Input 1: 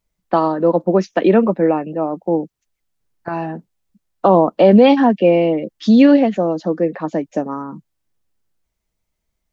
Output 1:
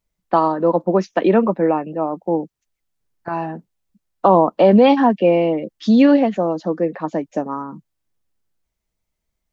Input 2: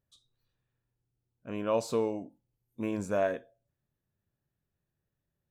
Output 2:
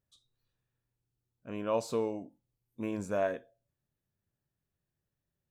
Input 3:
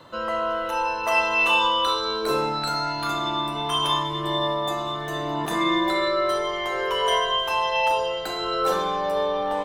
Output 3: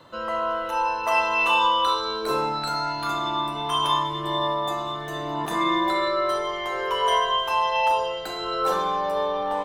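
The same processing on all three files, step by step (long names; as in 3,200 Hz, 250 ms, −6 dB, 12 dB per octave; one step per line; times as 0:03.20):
dynamic equaliser 1,000 Hz, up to +5 dB, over −31 dBFS, Q 1.8
level −2.5 dB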